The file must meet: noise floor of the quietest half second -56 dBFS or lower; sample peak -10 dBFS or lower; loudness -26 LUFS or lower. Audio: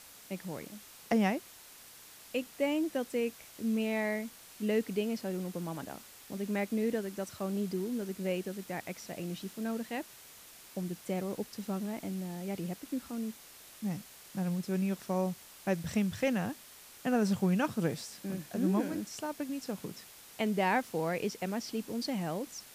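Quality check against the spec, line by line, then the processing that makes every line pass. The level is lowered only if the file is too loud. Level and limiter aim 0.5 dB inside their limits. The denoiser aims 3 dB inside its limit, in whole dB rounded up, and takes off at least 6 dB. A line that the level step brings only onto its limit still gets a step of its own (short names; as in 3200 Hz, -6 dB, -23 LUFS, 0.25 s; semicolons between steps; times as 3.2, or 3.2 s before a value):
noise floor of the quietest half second -54 dBFS: fail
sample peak -19.0 dBFS: OK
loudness -35.0 LUFS: OK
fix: denoiser 6 dB, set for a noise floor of -54 dBFS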